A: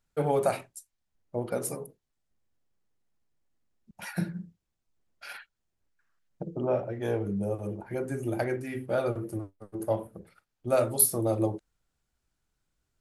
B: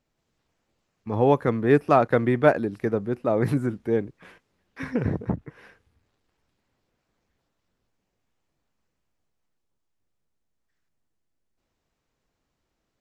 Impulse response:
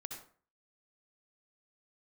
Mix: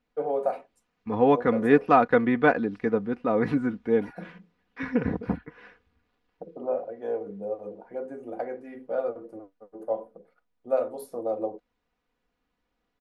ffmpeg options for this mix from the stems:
-filter_complex "[0:a]bandpass=frequency=560:width_type=q:width=1.3:csg=0,volume=1dB[link_01];[1:a]lowpass=3500,equalizer=frequency=600:width=3.6:gain=-4,volume=0.5dB[link_02];[link_01][link_02]amix=inputs=2:normalize=0,lowshelf=frequency=330:gain=-4,aecho=1:1:4.1:0.59"

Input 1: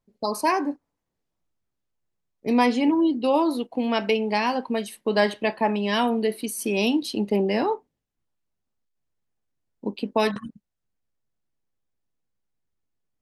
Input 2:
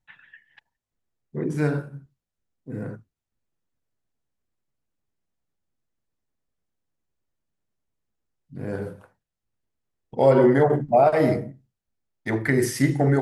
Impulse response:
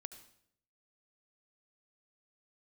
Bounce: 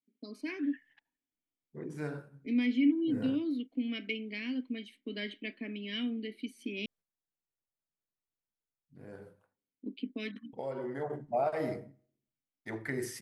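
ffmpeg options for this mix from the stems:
-filter_complex "[0:a]asplit=3[link_01][link_02][link_03];[link_01]bandpass=frequency=270:width_type=q:width=8,volume=0dB[link_04];[link_02]bandpass=frequency=2290:width_type=q:width=8,volume=-6dB[link_05];[link_03]bandpass=frequency=3010:width_type=q:width=8,volume=-9dB[link_06];[link_04][link_05][link_06]amix=inputs=3:normalize=0,volume=1dB,asplit=3[link_07][link_08][link_09];[link_07]atrim=end=6.86,asetpts=PTS-STARTPTS,afade=type=out:start_time=6.856:duration=0.004:curve=hsin[link_10];[link_08]atrim=start=6.86:end=9.43,asetpts=PTS-STARTPTS,volume=0[link_11];[link_09]atrim=start=9.43,asetpts=PTS-STARTPTS,afade=type=in:duration=0.004:curve=hsin[link_12];[link_10][link_11][link_12]concat=n=3:v=0:a=1,asplit=2[link_13][link_14];[1:a]adelay=400,volume=2.5dB,afade=type=out:start_time=8.69:duration=0.73:silence=0.375837,afade=type=in:start_time=10.85:duration=0.52:silence=0.398107,asplit=2[link_15][link_16];[link_16]volume=-20.5dB[link_17];[link_14]apad=whole_len=600379[link_18];[link_15][link_18]sidechaingate=range=-8dB:threshold=-56dB:ratio=16:detection=peak[link_19];[2:a]atrim=start_sample=2205[link_20];[link_17][link_20]afir=irnorm=-1:irlink=0[link_21];[link_13][link_19][link_21]amix=inputs=3:normalize=0,lowshelf=frequency=200:gain=-6.5"

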